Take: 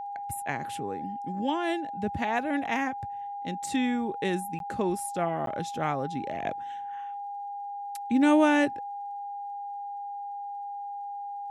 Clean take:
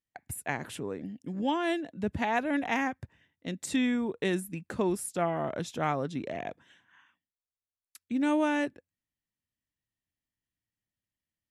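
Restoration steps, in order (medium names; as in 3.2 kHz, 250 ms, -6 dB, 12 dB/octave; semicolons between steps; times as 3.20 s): de-click; band-stop 810 Hz, Q 30; interpolate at 4.59/5.46 s, 12 ms; trim 0 dB, from 6.43 s -6 dB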